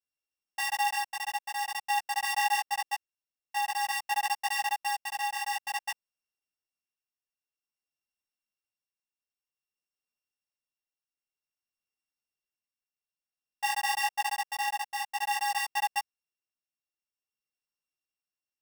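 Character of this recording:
a buzz of ramps at a fixed pitch in blocks of 16 samples
tremolo triangle 0.52 Hz, depth 50%
a shimmering, thickened sound

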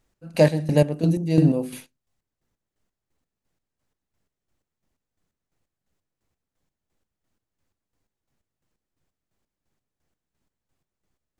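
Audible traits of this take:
chopped level 2.9 Hz, depth 65%, duty 40%

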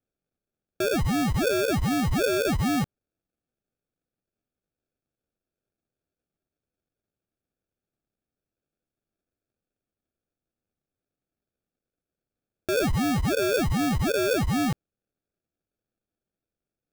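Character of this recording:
aliases and images of a low sample rate 1,000 Hz, jitter 0%

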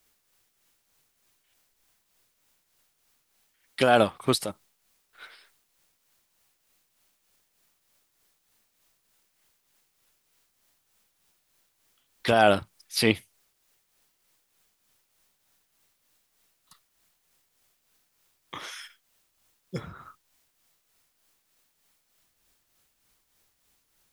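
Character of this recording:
a quantiser's noise floor 12 bits, dither triangular
tremolo triangle 3.3 Hz, depth 55%

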